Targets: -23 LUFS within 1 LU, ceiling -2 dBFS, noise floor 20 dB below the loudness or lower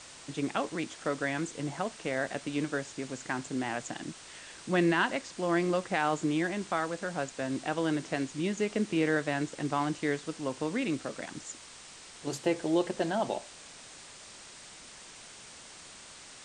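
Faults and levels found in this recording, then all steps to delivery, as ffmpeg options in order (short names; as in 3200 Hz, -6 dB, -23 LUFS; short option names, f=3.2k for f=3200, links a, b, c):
noise floor -50 dBFS; noise floor target -52 dBFS; loudness -32.0 LUFS; peak -14.0 dBFS; loudness target -23.0 LUFS
-> -af "afftdn=nr=6:nf=-50"
-af "volume=9dB"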